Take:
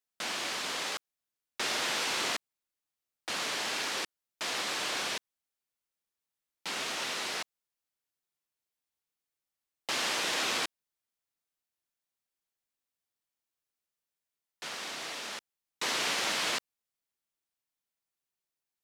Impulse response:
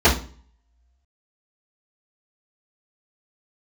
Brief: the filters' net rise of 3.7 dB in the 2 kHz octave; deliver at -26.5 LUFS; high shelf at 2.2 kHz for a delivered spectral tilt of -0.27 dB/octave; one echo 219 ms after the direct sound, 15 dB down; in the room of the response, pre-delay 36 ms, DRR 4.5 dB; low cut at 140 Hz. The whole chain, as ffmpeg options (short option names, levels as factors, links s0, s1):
-filter_complex "[0:a]highpass=140,equalizer=f=2000:t=o:g=6.5,highshelf=f=2200:g=-3.5,aecho=1:1:219:0.178,asplit=2[s0][s1];[1:a]atrim=start_sample=2205,adelay=36[s2];[s1][s2]afir=irnorm=-1:irlink=0,volume=0.0447[s3];[s0][s3]amix=inputs=2:normalize=0,volume=1.58"